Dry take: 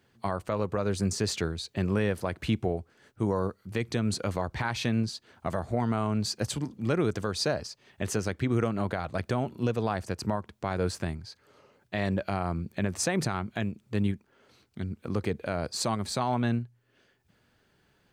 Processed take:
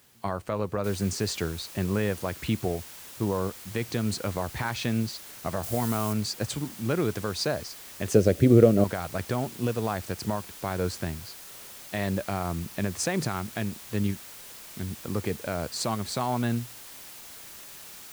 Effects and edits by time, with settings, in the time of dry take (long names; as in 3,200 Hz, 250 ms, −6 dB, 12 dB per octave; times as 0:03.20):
0:00.84: noise floor change −61 dB −45 dB
0:05.63–0:06.13: high-shelf EQ 5,200 Hz +10 dB
0:08.14–0:08.84: low shelf with overshoot 710 Hz +8 dB, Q 3